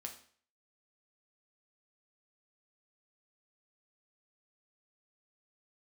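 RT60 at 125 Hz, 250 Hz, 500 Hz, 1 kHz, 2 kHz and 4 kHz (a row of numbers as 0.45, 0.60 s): 0.50, 0.50, 0.50, 0.50, 0.50, 0.45 s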